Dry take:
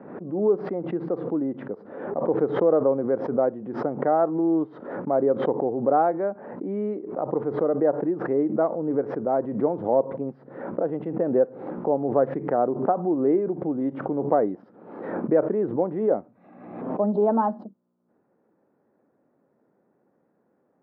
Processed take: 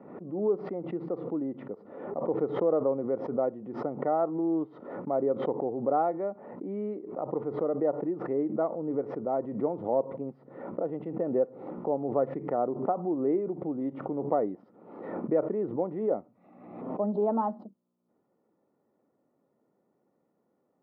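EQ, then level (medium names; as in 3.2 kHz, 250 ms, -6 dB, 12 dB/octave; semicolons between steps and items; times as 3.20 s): Butterworth band-stop 1.6 kHz, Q 6.1; -6.0 dB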